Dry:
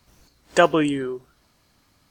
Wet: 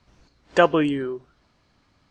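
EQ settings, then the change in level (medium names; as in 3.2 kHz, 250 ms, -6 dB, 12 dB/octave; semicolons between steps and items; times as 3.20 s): distance through air 120 m; 0.0 dB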